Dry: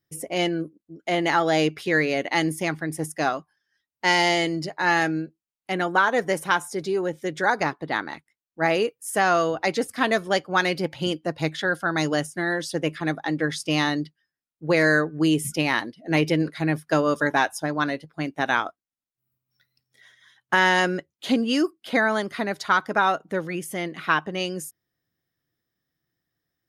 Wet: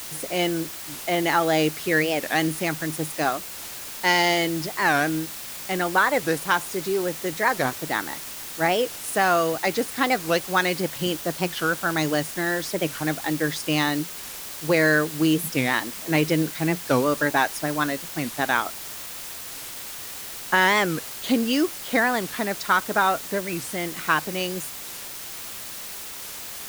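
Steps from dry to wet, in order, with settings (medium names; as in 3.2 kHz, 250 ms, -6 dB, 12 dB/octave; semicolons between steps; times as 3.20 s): word length cut 6-bit, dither triangular; warped record 45 rpm, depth 250 cents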